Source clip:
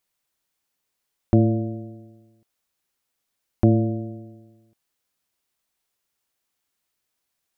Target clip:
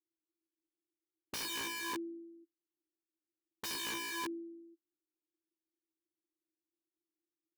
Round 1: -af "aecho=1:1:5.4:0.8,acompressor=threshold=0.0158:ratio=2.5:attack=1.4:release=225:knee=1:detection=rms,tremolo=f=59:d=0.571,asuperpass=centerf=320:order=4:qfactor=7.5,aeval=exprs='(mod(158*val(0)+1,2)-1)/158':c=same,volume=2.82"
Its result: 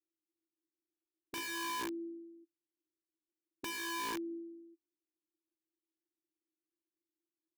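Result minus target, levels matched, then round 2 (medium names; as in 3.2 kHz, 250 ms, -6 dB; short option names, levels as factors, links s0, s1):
compression: peak gain reduction +6.5 dB
-af "aecho=1:1:5.4:0.8,acompressor=threshold=0.0531:ratio=2.5:attack=1.4:release=225:knee=1:detection=rms,tremolo=f=59:d=0.571,asuperpass=centerf=320:order=4:qfactor=7.5,aeval=exprs='(mod(158*val(0)+1,2)-1)/158':c=same,volume=2.82"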